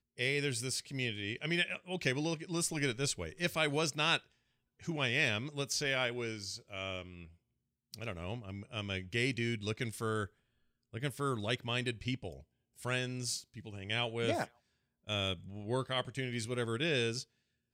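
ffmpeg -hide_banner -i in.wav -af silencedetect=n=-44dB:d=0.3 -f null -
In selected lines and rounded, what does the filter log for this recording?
silence_start: 4.18
silence_end: 4.83 | silence_duration: 0.65
silence_start: 7.25
silence_end: 7.94 | silence_duration: 0.69
silence_start: 10.26
silence_end: 10.94 | silence_duration: 0.68
silence_start: 12.37
silence_end: 12.79 | silence_duration: 0.42
silence_start: 14.46
silence_end: 15.08 | silence_duration: 0.63
silence_start: 17.23
silence_end: 17.73 | silence_duration: 0.50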